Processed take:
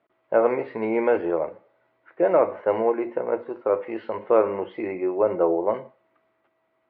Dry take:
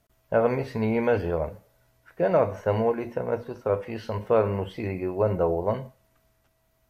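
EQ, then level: distance through air 290 m; cabinet simulation 290–4000 Hz, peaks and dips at 340 Hz +10 dB, 540 Hz +4 dB, 840 Hz +4 dB, 1.2 kHz +6 dB, 2.1 kHz +6 dB; 0.0 dB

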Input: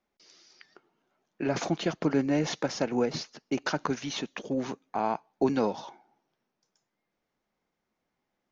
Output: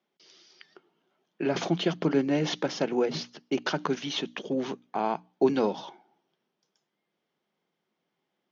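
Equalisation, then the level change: cabinet simulation 150–6300 Hz, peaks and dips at 170 Hz +7 dB, 380 Hz +5 dB, 3.2 kHz +8 dB; hum notches 60/120/180/240/300 Hz; 0.0 dB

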